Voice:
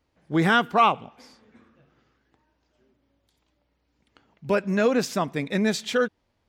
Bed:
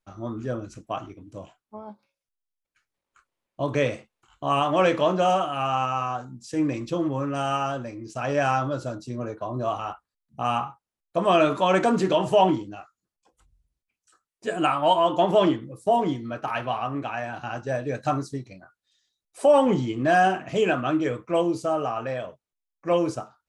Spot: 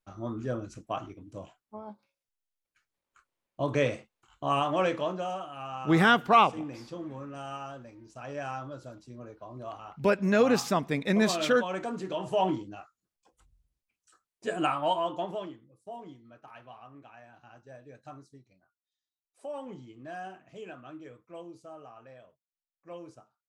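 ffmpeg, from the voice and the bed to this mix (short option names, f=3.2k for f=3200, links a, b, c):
-filter_complex "[0:a]adelay=5550,volume=-1.5dB[a];[1:a]volume=8.5dB,afade=t=out:st=4.38:d=0.91:silence=0.298538,afade=t=in:st=12.07:d=1.07:silence=0.266073,afade=t=out:st=14.23:d=1.25:silence=0.105925[b];[a][b]amix=inputs=2:normalize=0"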